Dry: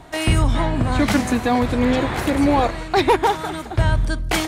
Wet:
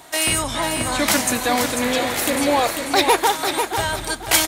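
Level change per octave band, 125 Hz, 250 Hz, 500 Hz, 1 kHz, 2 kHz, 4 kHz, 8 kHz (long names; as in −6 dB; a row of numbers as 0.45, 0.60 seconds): −12.5, −5.0, −0.5, +0.5, +3.0, +6.5, +12.5 decibels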